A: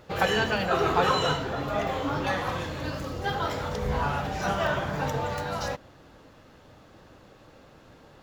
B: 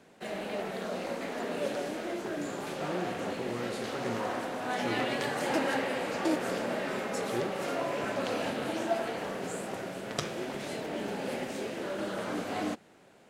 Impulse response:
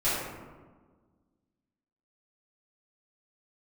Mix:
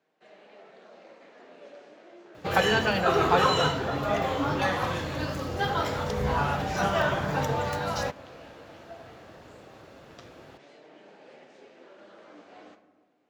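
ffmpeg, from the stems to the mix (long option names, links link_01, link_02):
-filter_complex "[0:a]adelay=2350,volume=1.5dB[link_01];[1:a]lowpass=frequency=6600:width=0.5412,lowpass=frequency=6600:width=1.3066,bass=frequency=250:gain=-10,treble=frequency=4000:gain=-3,flanger=delay=6.4:depth=8.7:regen=68:speed=0.18:shape=sinusoidal,volume=-12dB,asplit=2[link_02][link_03];[link_03]volume=-18.5dB[link_04];[2:a]atrim=start_sample=2205[link_05];[link_04][link_05]afir=irnorm=-1:irlink=0[link_06];[link_01][link_02][link_06]amix=inputs=3:normalize=0,highpass=60"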